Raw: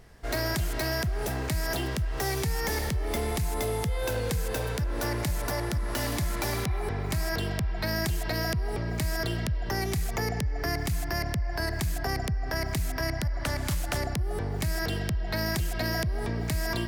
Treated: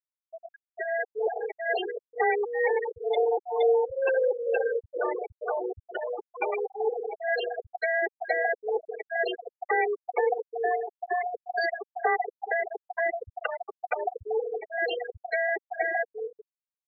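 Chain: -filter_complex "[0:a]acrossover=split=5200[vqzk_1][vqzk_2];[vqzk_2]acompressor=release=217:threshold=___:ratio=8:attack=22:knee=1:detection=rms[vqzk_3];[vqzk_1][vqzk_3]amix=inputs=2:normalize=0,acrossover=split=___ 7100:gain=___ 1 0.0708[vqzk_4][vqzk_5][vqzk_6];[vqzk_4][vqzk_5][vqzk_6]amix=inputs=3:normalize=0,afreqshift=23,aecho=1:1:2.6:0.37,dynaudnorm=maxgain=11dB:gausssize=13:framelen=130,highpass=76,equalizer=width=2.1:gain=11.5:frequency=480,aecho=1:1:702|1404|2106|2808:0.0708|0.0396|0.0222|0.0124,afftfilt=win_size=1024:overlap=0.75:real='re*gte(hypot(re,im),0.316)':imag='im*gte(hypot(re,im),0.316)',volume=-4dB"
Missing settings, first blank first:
-48dB, 550, 0.141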